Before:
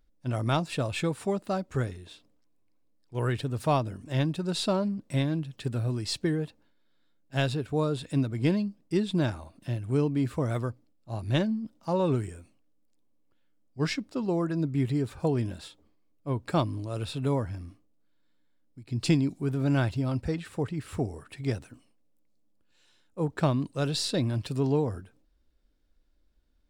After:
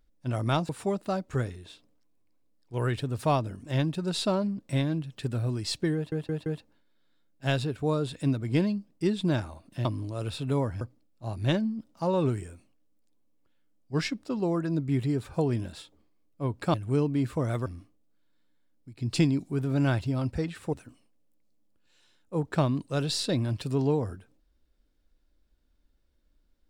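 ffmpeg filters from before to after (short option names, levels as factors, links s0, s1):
-filter_complex "[0:a]asplit=10[s0][s1][s2][s3][s4][s5][s6][s7][s8][s9];[s0]atrim=end=0.692[s10];[s1]atrim=start=1.098:end=6.532[s11];[s2]atrim=start=6.358:end=6.532[s12];[s3]atrim=start=6.358:end=6.532[s13];[s4]atrim=start=6.358:end=9.752[s14];[s5]atrim=start=16.598:end=17.562[s15];[s6]atrim=start=10.668:end=16.602[s16];[s7]atrim=start=9.748:end=10.672[s17];[s8]atrim=start=17.558:end=20.632[s18];[s9]atrim=start=21.578[s19];[s10][s11]acrossfade=d=0.004:c1=hsin:c2=hsin[s20];[s20][s12]acrossfade=d=0.004:c1=hsin:c2=hsin[s21];[s21][s13]acrossfade=d=0.004:c1=hsin:c2=hsin[s22];[s22][s14]acrossfade=d=0.004:c1=hsin:c2=hsin[s23];[s23][s15]acrossfade=d=0.004:c1=hsin:c2=hsin[s24];[s24][s16]acrossfade=d=0.004:c1=hsin:c2=hsin[s25];[s25][s17]acrossfade=d=0.004:c1=hsin:c2=hsin[s26];[s26][s18]acrossfade=d=0.004:c1=hsin:c2=hsin[s27];[s27][s19]acrossfade=d=0.004:c1=hsin:c2=hsin"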